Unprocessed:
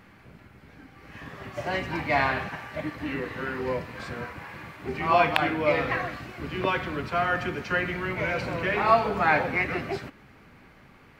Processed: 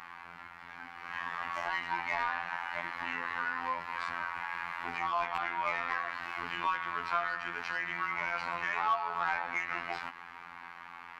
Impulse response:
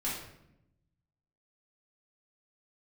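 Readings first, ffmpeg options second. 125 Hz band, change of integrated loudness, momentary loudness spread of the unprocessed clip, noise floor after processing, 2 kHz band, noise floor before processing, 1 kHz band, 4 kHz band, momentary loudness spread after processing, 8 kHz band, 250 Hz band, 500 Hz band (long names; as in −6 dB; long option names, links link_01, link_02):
−21.0 dB, −7.5 dB, 16 LU, −49 dBFS, −5.0 dB, −54 dBFS, −5.5 dB, −7.5 dB, 15 LU, can't be measured, −19.0 dB, −17.0 dB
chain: -filter_complex "[0:a]lowshelf=frequency=710:width_type=q:width=3:gain=-8.5,acompressor=threshold=-41dB:ratio=2.5,asplit=2[link_01][link_02];[link_02]highpass=frequency=720:poles=1,volume=18dB,asoftclip=type=tanh:threshold=-16.5dB[link_03];[link_01][link_03]amix=inputs=2:normalize=0,lowpass=frequency=2000:poles=1,volume=-6dB,afftfilt=real='hypot(re,im)*cos(PI*b)':imag='0':win_size=2048:overlap=0.75"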